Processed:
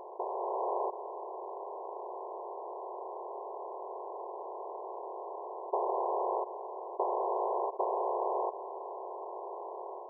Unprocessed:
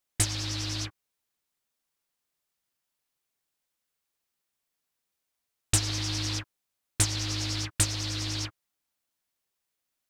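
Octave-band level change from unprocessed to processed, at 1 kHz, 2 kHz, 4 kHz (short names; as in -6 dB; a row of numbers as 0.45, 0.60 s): +14.5 dB, under -40 dB, under -40 dB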